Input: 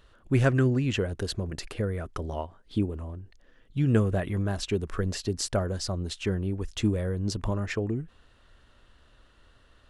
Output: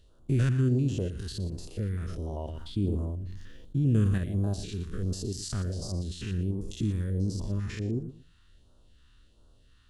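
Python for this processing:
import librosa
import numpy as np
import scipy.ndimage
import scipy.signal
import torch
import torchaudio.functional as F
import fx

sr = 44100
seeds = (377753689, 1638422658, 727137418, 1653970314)

y = fx.spec_steps(x, sr, hold_ms=100)
y = fx.peak_eq(y, sr, hz=2200.0, db=-4.0, octaves=0.55)
y = fx.echo_feedback(y, sr, ms=118, feedback_pct=21, wet_db=-13)
y = fx.phaser_stages(y, sr, stages=2, low_hz=560.0, high_hz=2000.0, hz=1.4, feedback_pct=20)
y = fx.sustainer(y, sr, db_per_s=26.0, at=(1.77, 4.18))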